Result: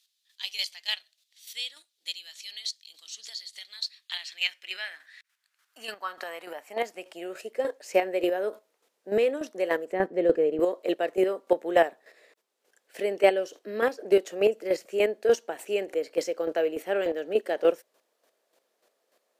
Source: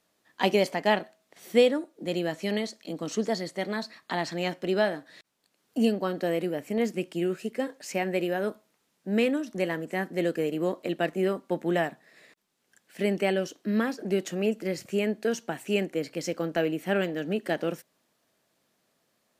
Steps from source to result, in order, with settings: high-pass sweep 3700 Hz -> 470 Hz, 3.83–7.76; chopper 3.4 Hz, depth 60%, duty 20%; 9.92–10.6 RIAA curve playback; gain +3.5 dB

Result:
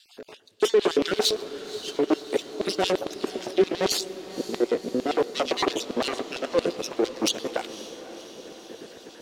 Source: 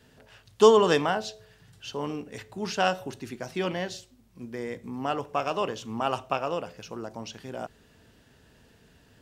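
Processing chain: random spectral dropouts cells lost 32%; low shelf 350 Hz +10 dB; sample leveller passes 1; reverse; compressor 5:1, threshold -32 dBFS, peak gain reduction 20 dB; reverse; added harmonics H 5 -8 dB, 8 -8 dB, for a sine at -19.5 dBFS; rotary speaker horn 5.5 Hz, later 0.6 Hz, at 3.05; LFO high-pass square 8.8 Hz 360–3800 Hz; diffused feedback echo 0.534 s, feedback 65%, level -14.5 dB; on a send at -21.5 dB: reverb RT60 4.1 s, pre-delay 96 ms; on the sum: gain +3.5 dB

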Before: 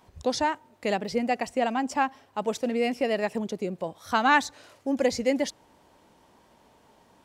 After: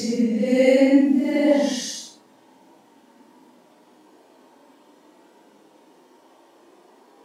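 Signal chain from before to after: high-pass sweep 160 Hz -> 480 Hz, 4.73–7.09; Paulstretch 5.9×, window 0.10 s, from 5.17; gain +3.5 dB

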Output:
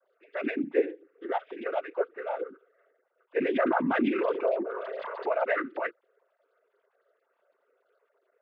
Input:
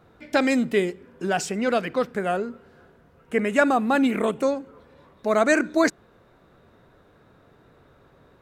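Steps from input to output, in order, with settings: sine-wave speech; noise vocoder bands 16; 3.36–5.33 fast leveller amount 70%; gain -8.5 dB

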